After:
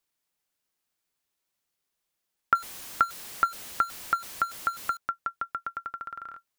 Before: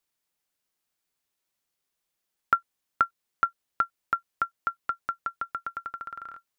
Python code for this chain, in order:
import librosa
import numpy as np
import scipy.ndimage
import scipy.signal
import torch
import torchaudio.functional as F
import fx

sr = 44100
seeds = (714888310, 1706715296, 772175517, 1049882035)

y = fx.zero_step(x, sr, step_db=-35.5, at=(2.55, 4.97))